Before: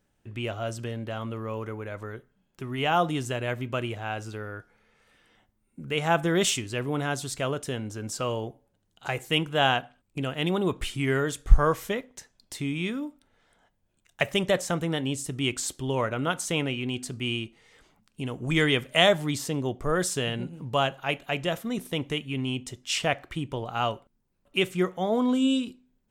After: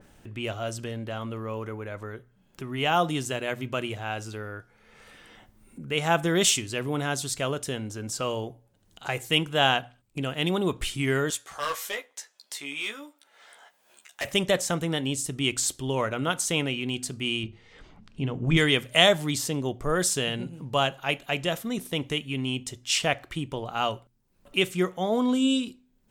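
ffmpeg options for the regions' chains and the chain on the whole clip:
-filter_complex "[0:a]asettb=1/sr,asplit=3[a][b][c];[a]atrim=end=11.304[d];[b]atrim=start=11.3:end=14.25,asetpts=PTS-STARTPTS,afade=t=in:d=0.004:c=qsin,afade=t=out:st=2.946:d=0.004:c=qsin,highpass=690,asoftclip=type=hard:threshold=-26.5dB,asplit=2[e][f];[f]adelay=14,volume=-4dB[g];[e][g]amix=inputs=2:normalize=0,atrim=end_sample=130095[h];[c]atrim=start=14.246[i];[d][h]acrossfade=d=0.004:c1=hsin:c2=qsin[j];[j][i]acrossfade=d=0.004:c1=qsin:c2=hsin,asettb=1/sr,asplit=3[k][l][m];[k]atrim=end=17.434[n];[l]atrim=start=17.43:end=18.57,asetpts=PTS-STARTPTS,afade=t=in:d=0.004:c=qsin,afade=t=out:st=1.136:d=0.004:c=qsin,lowpass=4.4k,lowshelf=f=240:g=9.5,bandreject=f=50:t=h:w=6,bandreject=f=100:t=h:w=6,bandreject=f=150:t=h:w=6,bandreject=f=200:t=h:w=6,bandreject=f=250:t=h:w=6,bandreject=f=300:t=h:w=6,bandreject=f=350:t=h:w=6,bandreject=f=400:t=h:w=6,bandreject=f=450:t=h:w=6,bandreject=f=500:t=h:w=6[o];[m]atrim=start=18.566[p];[n][o]acrossfade=d=0.004:c1=hsin:c2=qsin[q];[q][p]acrossfade=d=0.004:c1=qsin:c2=hsin,bandreject=f=60:t=h:w=6,bandreject=f=120:t=h:w=6,acompressor=mode=upward:threshold=-40dB:ratio=2.5,adynamicequalizer=threshold=0.0112:dfrequency=2800:dqfactor=0.7:tfrequency=2800:tqfactor=0.7:attack=5:release=100:ratio=0.375:range=2.5:mode=boostabove:tftype=highshelf"

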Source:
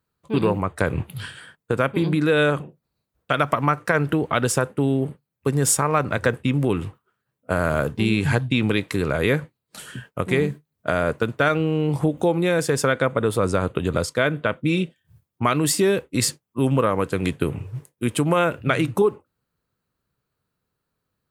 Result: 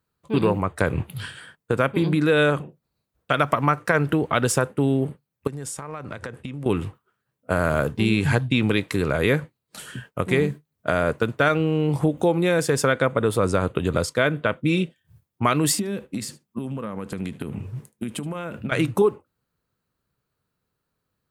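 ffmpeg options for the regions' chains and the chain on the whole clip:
-filter_complex "[0:a]asettb=1/sr,asplit=3[a][b][c];[a]atrim=end=5.474[d];[b]atrim=start=5.47:end=6.66,asetpts=PTS-STARTPTS,afade=t=in:d=0.004:c=qsin,afade=t=out:st=1.186:d=0.004:c=qsin,lowpass=f=12k:w=0.5412,lowpass=f=12k:w=1.3066,acompressor=threshold=-29dB:ratio=10:attack=3.2:release=140:knee=1:detection=peak[e];[c]atrim=start=6.656[f];[d][e]acrossfade=d=0.004:c1=hsin:c2=qsin[g];[g][f]acrossfade=d=0.004:c1=qsin:c2=hsin,asettb=1/sr,asplit=3[h][i][j];[h]atrim=end=15.784[k];[i]atrim=start=15.78:end=18.72,asetpts=PTS-STARTPTS,afade=t=in:d=0.004:c=qsin,afade=t=out:st=2.936:d=0.004:c=qsin,acompressor=threshold=-28dB:ratio=12:attack=3.2:release=140:knee=1:detection=peak,equalizer=f=210:w=3.9:g=12.5,aecho=1:1:75:0.0944,atrim=end_sample=129654[l];[j]atrim=start=18.716[m];[k][l]acrossfade=d=0.004:c1=hsin:c2=qsin[n];[n][m]acrossfade=d=0.004:c1=qsin:c2=hsin"

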